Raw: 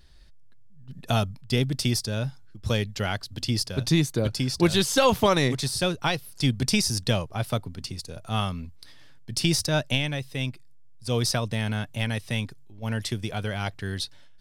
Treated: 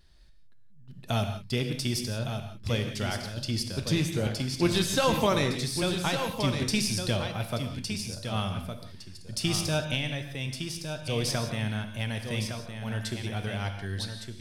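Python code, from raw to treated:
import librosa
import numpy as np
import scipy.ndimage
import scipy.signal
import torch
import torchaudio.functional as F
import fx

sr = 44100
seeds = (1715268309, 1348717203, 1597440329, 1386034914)

y = fx.rattle_buzz(x, sr, strikes_db=-23.0, level_db=-26.0)
y = y + 10.0 ** (-7.5 / 20.0) * np.pad(y, (int(1161 * sr / 1000.0), 0))[:len(y)]
y = fx.rev_gated(y, sr, seeds[0], gate_ms=200, shape='flat', drr_db=6.0)
y = y * librosa.db_to_amplitude(-5.0)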